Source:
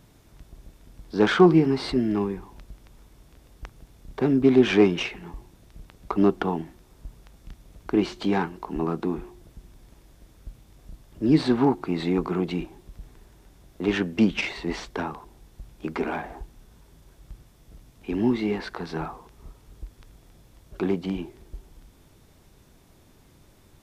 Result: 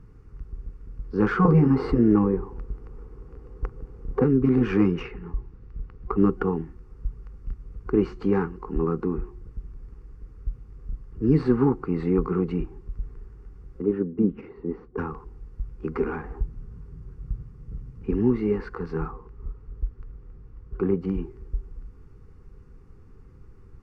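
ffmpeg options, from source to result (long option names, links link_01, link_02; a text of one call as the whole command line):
ffmpeg -i in.wav -filter_complex "[0:a]asettb=1/sr,asplit=3[link_01][link_02][link_03];[link_01]atrim=end=1.454[link_04];[link_02]atrim=start=1.45:end=4.24,asetpts=PTS-STARTPTS,afade=type=in:duration=0.004:curve=qsin,afade=type=out:start_time=2.786:duration=0.004:curve=qsin,equalizer=frequency=530:width_type=o:width=2.3:gain=11.5[link_05];[link_03]atrim=start=4.236[link_06];[link_04][link_05]acrossfade=duration=0.004:curve1=hsin:curve2=qsin[link_07];[link_07][link_06]acrossfade=duration=0.004:curve1=qsin:curve2=hsin,asettb=1/sr,asplit=3[link_08][link_09][link_10];[link_08]atrim=end=5.014[link_11];[link_09]atrim=start=5.01:end=6.19,asetpts=PTS-STARTPTS,afade=type=in:duration=0.004:curve=qsin,afade=type=out:start_time=1.176:duration=0.004:curve=qsin,lowpass=4900[link_12];[link_10]atrim=start=6.186[link_13];[link_11][link_12]acrossfade=duration=0.004:curve1=hsin:curve2=qsin[link_14];[link_14][link_13]acrossfade=duration=0.004:curve1=qsin:curve2=hsin,asettb=1/sr,asplit=3[link_15][link_16][link_17];[link_15]atrim=end=13.824[link_18];[link_16]atrim=start=13.82:end=14.98,asetpts=PTS-STARTPTS,afade=type=in:duration=0.004:curve=qsin,afade=type=out:start_time=1.156:duration=0.004:curve=qsin,bandpass=frequency=290:width_type=q:width=1[link_19];[link_17]atrim=start=14.976[link_20];[link_18][link_19]acrossfade=duration=0.004:curve1=hsin:curve2=qsin[link_21];[link_21][link_20]acrossfade=duration=0.004:curve1=qsin:curve2=hsin,asettb=1/sr,asplit=3[link_22][link_23][link_24];[link_22]atrim=end=16.394[link_25];[link_23]atrim=start=16.39:end=18.11,asetpts=PTS-STARTPTS,afade=type=in:duration=0.004:curve=qsin,afade=type=out:start_time=1.716:duration=0.004:curve=qsin,equalizer=frequency=140:width_type=o:width=1.7:gain=9.5[link_26];[link_24]atrim=start=18.106[link_27];[link_25][link_26]acrossfade=duration=0.004:curve1=hsin:curve2=qsin[link_28];[link_28][link_27]acrossfade=duration=0.004:curve1=qsin:curve2=hsin,asettb=1/sr,asplit=3[link_29][link_30][link_31];[link_29]atrim=end=19.114[link_32];[link_30]atrim=start=19.11:end=21.01,asetpts=PTS-STARTPTS,afade=type=in:duration=0.004:curve=qsin,afade=type=out:start_time=1.896:duration=0.004:curve=qsin,lowpass=frequency=2800:poles=1[link_33];[link_31]atrim=start=21.006[link_34];[link_32][link_33]acrossfade=duration=0.004:curve1=hsin:curve2=qsin[link_35];[link_35][link_34]acrossfade=duration=0.004:curve1=qsin:curve2=hsin,superequalizer=7b=2.24:8b=0.251:10b=2.51:11b=1.41:13b=0.355,afftfilt=real='re*lt(hypot(re,im),2)':imag='im*lt(hypot(re,im),2)':win_size=1024:overlap=0.75,aemphasis=mode=reproduction:type=riaa,volume=-6.5dB" out.wav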